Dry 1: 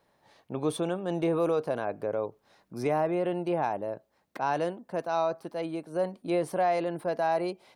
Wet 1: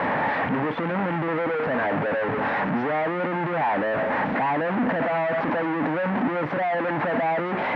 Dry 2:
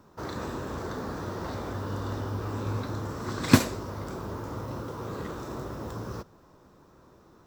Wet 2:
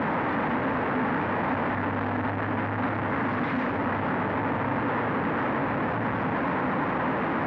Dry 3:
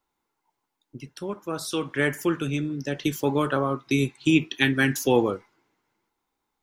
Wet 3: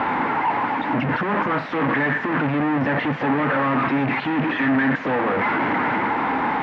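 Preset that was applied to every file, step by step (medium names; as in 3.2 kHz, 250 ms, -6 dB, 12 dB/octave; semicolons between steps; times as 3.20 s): one-bit comparator; cabinet simulation 140–2200 Hz, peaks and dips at 260 Hz +6 dB, 370 Hz -7 dB, 860 Hz +4 dB, 1.8 kHz +4 dB; trim +6.5 dB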